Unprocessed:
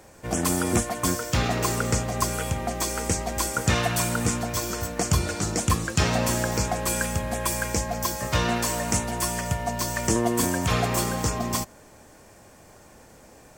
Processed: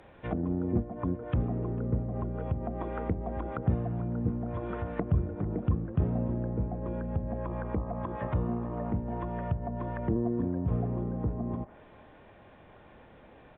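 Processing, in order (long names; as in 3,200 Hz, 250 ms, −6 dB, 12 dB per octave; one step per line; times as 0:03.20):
downsampling to 8,000 Hz
treble cut that deepens with the level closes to 380 Hz, closed at −23.5 dBFS
on a send: delay with a band-pass on its return 448 ms, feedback 52%, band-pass 1,200 Hz, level −17 dB
0:07.44–0:08.89: on the sum: hum with harmonics 60 Hz, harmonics 21, −44 dBFS 0 dB per octave
level −3 dB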